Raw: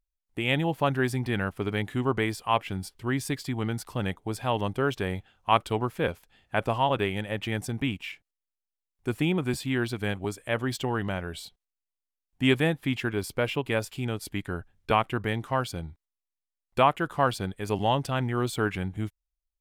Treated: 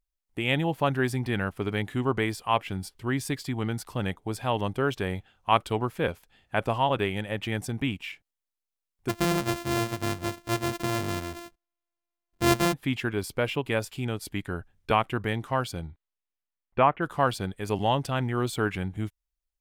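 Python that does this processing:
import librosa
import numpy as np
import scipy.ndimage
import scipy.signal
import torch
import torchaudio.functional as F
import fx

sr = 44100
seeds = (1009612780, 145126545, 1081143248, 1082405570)

y = fx.sample_sort(x, sr, block=128, at=(9.08, 12.72), fade=0.02)
y = fx.lowpass(y, sr, hz=fx.line((15.87, 4200.0), (17.01, 2300.0)), slope=24, at=(15.87, 17.01), fade=0.02)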